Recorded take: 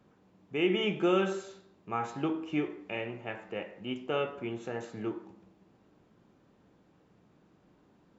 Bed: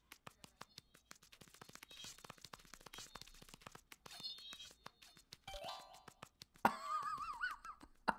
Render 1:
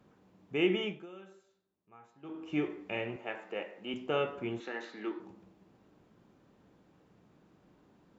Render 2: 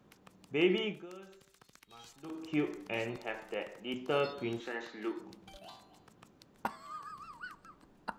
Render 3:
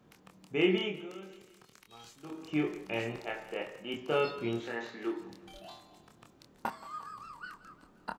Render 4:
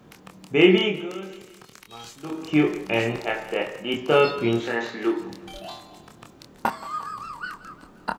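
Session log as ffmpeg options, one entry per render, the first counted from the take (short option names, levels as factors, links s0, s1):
-filter_complex "[0:a]asettb=1/sr,asplit=3[s0][s1][s2];[s0]atrim=end=3.164[s3];[s1]atrim=start=3.16:end=3.94,asetpts=PTS-STARTPTS,afade=t=in:d=0.004:c=qsin,afade=t=out:st=0.776:d=0.004:c=qsin,highpass=290[s4];[s2]atrim=start=3.936[s5];[s3][s4]acrossfade=d=0.004:c1=hsin:c2=qsin[s6];[s6][s5]acrossfade=d=0.004:c1=qsin:c2=hsin,asettb=1/sr,asplit=3[s7][s8][s9];[s7]atrim=end=4.604[s10];[s8]atrim=start=4.6:end=5.2,asetpts=PTS-STARTPTS,afade=t=in:d=0.004:c=qsin,afade=t=out:st=0.596:d=0.004:c=qsin,highpass=f=270:w=0.5412,highpass=f=270:w=1.3066,equalizer=f=460:t=q:w=4:g=-6,equalizer=f=660:t=q:w=4:g=-7,equalizer=f=1900:t=q:w=4:g=8,equalizer=f=3900:t=q:w=4:g=8,lowpass=f=5700:w=0.5412,lowpass=f=5700:w=1.3066[s11];[s9]atrim=start=5.196[s12];[s10][s11]acrossfade=d=0.004:c1=hsin:c2=qsin[s13];[s13][s12]acrossfade=d=0.004:c1=qsin:c2=hsin,asplit=3[s14][s15][s16];[s14]atrim=end=1.06,asetpts=PTS-STARTPTS,afade=t=out:st=0.64:d=0.42:silence=0.0668344[s17];[s15]atrim=start=1.06:end=2.22,asetpts=PTS-STARTPTS,volume=0.0668[s18];[s16]atrim=start=2.22,asetpts=PTS-STARTPTS,afade=t=in:d=0.42:silence=0.0668344[s19];[s17][s18][s19]concat=n=3:v=0:a=1"
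-filter_complex "[1:a]volume=0.708[s0];[0:a][s0]amix=inputs=2:normalize=0"
-filter_complex "[0:a]asplit=2[s0][s1];[s1]adelay=26,volume=0.631[s2];[s0][s2]amix=inputs=2:normalize=0,aecho=1:1:176|352|528|704|880:0.126|0.068|0.0367|0.0198|0.0107"
-af "volume=3.76"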